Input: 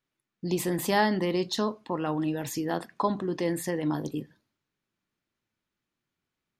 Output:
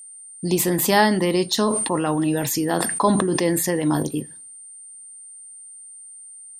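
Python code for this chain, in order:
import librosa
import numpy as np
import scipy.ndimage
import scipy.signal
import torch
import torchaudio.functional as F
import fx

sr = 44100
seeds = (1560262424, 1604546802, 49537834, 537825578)

y = fx.high_shelf(x, sr, hz=7900.0, db=10.0)
y = y + 10.0 ** (-46.0 / 20.0) * np.sin(2.0 * np.pi * 8900.0 * np.arange(len(y)) / sr)
y = fx.sustainer(y, sr, db_per_s=34.0, at=(1.59, 4.03))
y = y * librosa.db_to_amplitude(7.0)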